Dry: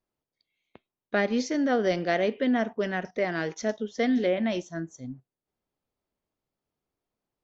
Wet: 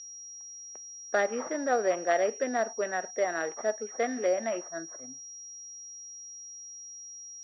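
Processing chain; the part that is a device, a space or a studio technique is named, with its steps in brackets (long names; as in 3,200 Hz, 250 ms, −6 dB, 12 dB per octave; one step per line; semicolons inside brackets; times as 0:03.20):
toy sound module (linearly interpolated sample-rate reduction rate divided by 8×; switching amplifier with a slow clock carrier 5,700 Hz; loudspeaker in its box 700–3,900 Hz, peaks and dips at 1,000 Hz −7 dB, 1,500 Hz −3 dB, 2,300 Hz −7 dB, 3,400 Hz −6 dB)
level +6 dB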